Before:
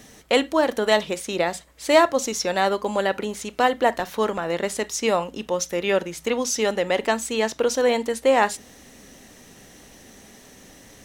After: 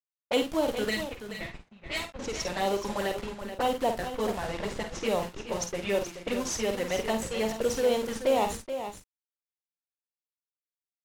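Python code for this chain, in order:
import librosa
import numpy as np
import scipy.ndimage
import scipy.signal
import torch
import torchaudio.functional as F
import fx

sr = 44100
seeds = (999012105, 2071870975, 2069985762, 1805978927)

p1 = fx.spec_box(x, sr, start_s=0.9, length_s=1.29, low_hz=230.0, high_hz=1800.0, gain_db=-18)
p2 = fx.env_flanger(p1, sr, rest_ms=11.3, full_db=-17.0)
p3 = fx.schmitt(p2, sr, flips_db=-27.5)
p4 = p2 + (p3 * 10.0 ** (-5.5 / 20.0))
p5 = fx.quant_dither(p4, sr, seeds[0], bits=6, dither='none')
p6 = fx.env_lowpass(p5, sr, base_hz=440.0, full_db=-21.0)
p7 = p6 + fx.echo_multitap(p6, sr, ms=(50, 68, 428, 467), db=(-7.5, -17.5, -10.0, -17.5), dry=0)
y = p7 * 10.0 ** (-7.0 / 20.0)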